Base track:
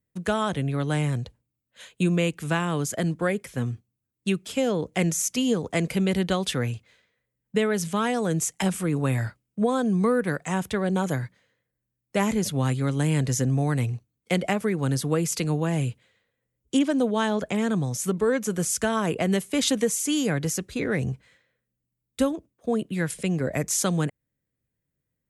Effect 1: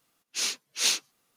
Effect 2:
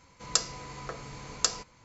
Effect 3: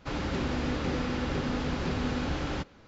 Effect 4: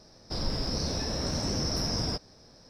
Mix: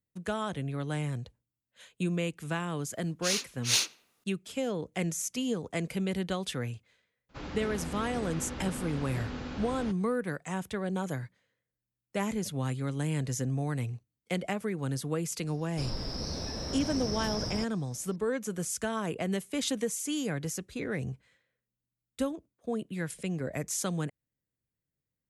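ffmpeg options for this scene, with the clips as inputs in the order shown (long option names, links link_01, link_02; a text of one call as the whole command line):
ffmpeg -i bed.wav -i cue0.wav -i cue1.wav -i cue2.wav -i cue3.wav -filter_complex "[0:a]volume=-8dB[link_01];[1:a]asplit=2[link_02][link_03];[link_03]adelay=87,lowpass=frequency=2400:poles=1,volume=-21dB,asplit=2[link_04][link_05];[link_05]adelay=87,lowpass=frequency=2400:poles=1,volume=0.5,asplit=2[link_06][link_07];[link_07]adelay=87,lowpass=frequency=2400:poles=1,volume=0.5,asplit=2[link_08][link_09];[link_09]adelay=87,lowpass=frequency=2400:poles=1,volume=0.5[link_10];[link_02][link_04][link_06][link_08][link_10]amix=inputs=5:normalize=0,atrim=end=1.36,asetpts=PTS-STARTPTS,volume=-1.5dB,afade=type=in:duration=0.004:curve=hsin,afade=type=out:start_time=1.356:duration=0.004:curve=hsin,adelay=2880[link_11];[3:a]atrim=end=2.87,asetpts=PTS-STARTPTS,volume=-8dB,afade=type=in:duration=0.004:curve=hsin,afade=type=out:start_time=2.866:duration=0.004:curve=hsin,adelay=7290[link_12];[4:a]atrim=end=2.69,asetpts=PTS-STARTPTS,volume=-5dB,afade=type=in:duration=0.004:curve=hsin,afade=type=out:start_time=2.686:duration=0.004:curve=hsin,adelay=15470[link_13];[link_01][link_11][link_12][link_13]amix=inputs=4:normalize=0" out.wav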